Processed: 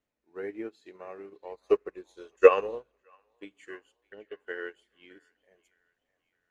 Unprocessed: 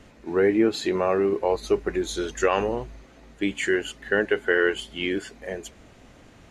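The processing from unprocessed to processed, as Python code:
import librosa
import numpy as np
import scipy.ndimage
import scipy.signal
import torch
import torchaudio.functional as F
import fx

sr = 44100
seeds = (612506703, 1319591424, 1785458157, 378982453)

y = fx.bass_treble(x, sr, bass_db=-7, treble_db=1)
y = fx.small_body(y, sr, hz=(490.0, 1100.0, 2600.0), ring_ms=30, db=12, at=(1.67, 3.45))
y = fx.env_phaser(y, sr, low_hz=230.0, high_hz=1700.0, full_db=-20.5, at=(3.95, 4.4))
y = fx.echo_wet_bandpass(y, sr, ms=615, feedback_pct=48, hz=1400.0, wet_db=-11.0)
y = fx.room_shoebox(y, sr, seeds[0], volume_m3=3600.0, walls='furnished', distance_m=0.4)
y = fx.upward_expand(y, sr, threshold_db=-31.0, expansion=2.5)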